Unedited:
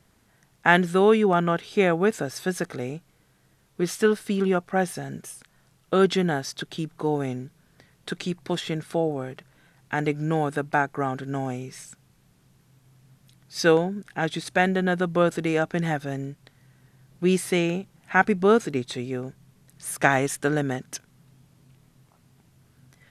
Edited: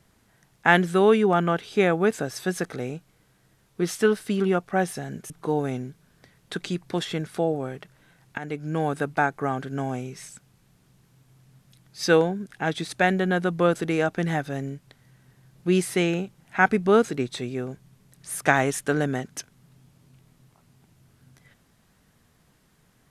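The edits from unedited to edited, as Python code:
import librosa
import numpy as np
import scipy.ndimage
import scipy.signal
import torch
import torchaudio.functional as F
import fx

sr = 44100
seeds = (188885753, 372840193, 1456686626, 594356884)

y = fx.edit(x, sr, fx.cut(start_s=5.3, length_s=1.56),
    fx.fade_in_from(start_s=9.94, length_s=0.54, floor_db=-12.0), tone=tone)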